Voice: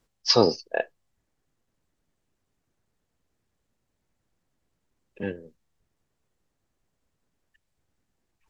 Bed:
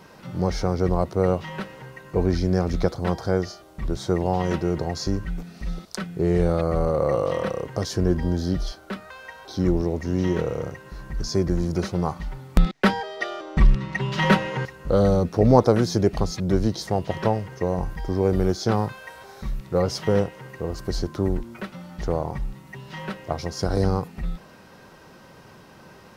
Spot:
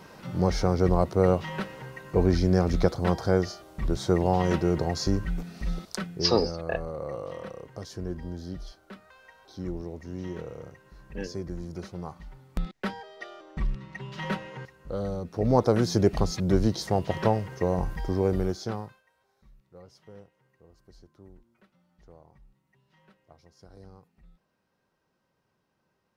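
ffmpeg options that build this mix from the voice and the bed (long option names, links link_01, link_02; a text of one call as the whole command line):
ffmpeg -i stem1.wav -i stem2.wav -filter_complex "[0:a]adelay=5950,volume=-4.5dB[link_01];[1:a]volume=11dB,afade=type=out:start_time=5.89:duration=0.44:silence=0.237137,afade=type=in:start_time=15.24:duration=0.75:silence=0.266073,afade=type=out:start_time=18.01:duration=1.02:silence=0.0473151[link_02];[link_01][link_02]amix=inputs=2:normalize=0" out.wav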